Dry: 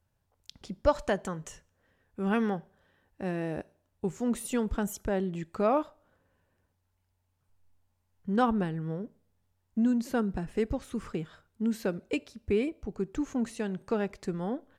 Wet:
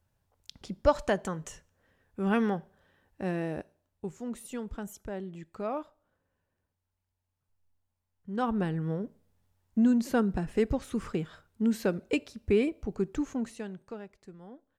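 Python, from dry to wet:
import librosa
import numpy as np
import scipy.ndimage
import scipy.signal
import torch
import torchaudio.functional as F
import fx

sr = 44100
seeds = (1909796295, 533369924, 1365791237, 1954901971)

y = fx.gain(x, sr, db=fx.line((3.36, 1.0), (4.3, -8.0), (8.29, -8.0), (8.71, 2.5), (13.06, 2.5), (13.72, -7.0), (14.11, -15.5)))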